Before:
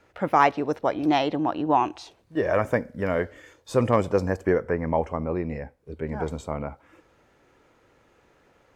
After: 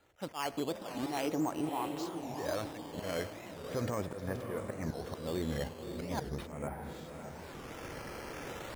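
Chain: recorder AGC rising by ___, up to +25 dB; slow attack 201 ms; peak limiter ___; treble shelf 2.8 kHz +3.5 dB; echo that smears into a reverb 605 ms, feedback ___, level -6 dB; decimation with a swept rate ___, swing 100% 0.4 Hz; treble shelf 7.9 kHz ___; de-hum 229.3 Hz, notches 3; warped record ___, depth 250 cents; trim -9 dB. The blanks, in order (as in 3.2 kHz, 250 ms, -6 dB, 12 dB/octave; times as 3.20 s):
17 dB/s, -16 dBFS, 49%, 8×, -3 dB, 45 rpm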